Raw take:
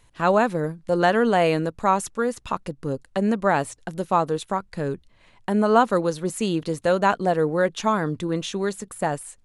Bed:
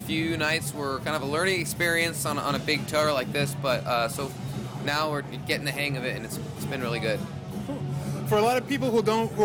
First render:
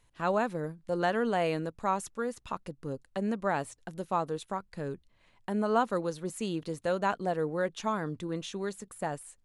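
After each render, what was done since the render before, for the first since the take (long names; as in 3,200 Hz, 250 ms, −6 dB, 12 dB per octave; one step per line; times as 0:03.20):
level −9.5 dB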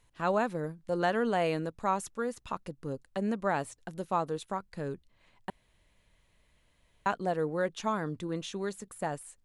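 0:05.50–0:07.06: fill with room tone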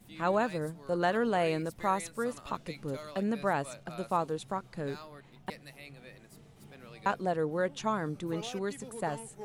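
mix in bed −21.5 dB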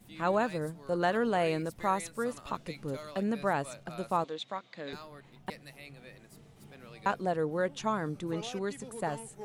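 0:04.24–0:04.93: loudspeaker in its box 320–6,400 Hz, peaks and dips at 400 Hz −8 dB, 860 Hz −5 dB, 1,400 Hz −4 dB, 2,100 Hz +6 dB, 3,600 Hz +10 dB, 5,300 Hz −3 dB
0:08.23–0:08.92: low-pass filter 11,000 Hz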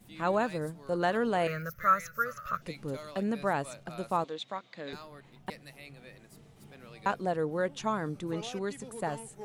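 0:01.47–0:02.62: drawn EQ curve 170 Hz 0 dB, 290 Hz −21 dB, 590 Hz 0 dB, 860 Hz −25 dB, 1,300 Hz +14 dB, 2,500 Hz −3 dB, 3,800 Hz −11 dB, 6,200 Hz +4 dB, 9,100 Hz −22 dB, 13,000 Hz +14 dB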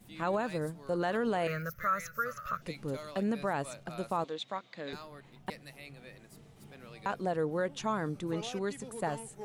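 brickwall limiter −22 dBFS, peak gain reduction 7.5 dB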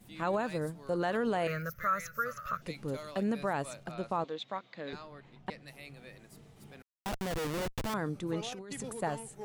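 0:03.91–0:05.68: high-frequency loss of the air 81 metres
0:06.82–0:07.94: comparator with hysteresis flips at −34.5 dBFS
0:08.52–0:08.93: compressor whose output falls as the input rises −42 dBFS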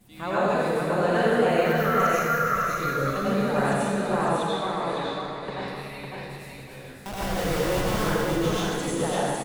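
on a send: repeating echo 553 ms, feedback 26%, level −4 dB
on the sum: dense smooth reverb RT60 1.6 s, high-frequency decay 0.95×, pre-delay 75 ms, DRR −9 dB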